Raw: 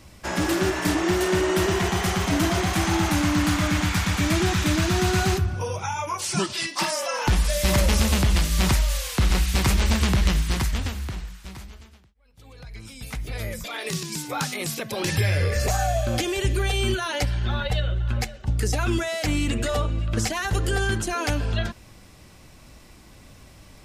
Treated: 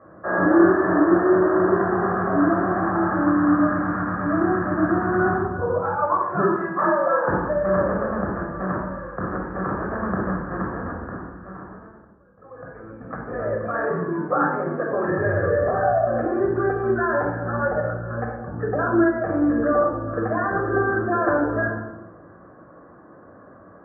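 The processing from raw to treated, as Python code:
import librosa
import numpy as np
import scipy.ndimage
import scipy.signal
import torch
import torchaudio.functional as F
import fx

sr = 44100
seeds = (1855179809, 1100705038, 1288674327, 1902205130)

y = scipy.signal.sosfilt(scipy.signal.cheby1(6, 3, 1700.0, 'lowpass', fs=sr, output='sos'), x)
y = fx.room_shoebox(y, sr, seeds[0], volume_m3=3100.0, walls='furnished', distance_m=6.1)
y = fx.rider(y, sr, range_db=5, speed_s=2.0)
y = scipy.signal.sosfilt(scipy.signal.butter(2, 280.0, 'highpass', fs=sr, output='sos'), y)
y = F.gain(torch.from_numpy(y), 2.0).numpy()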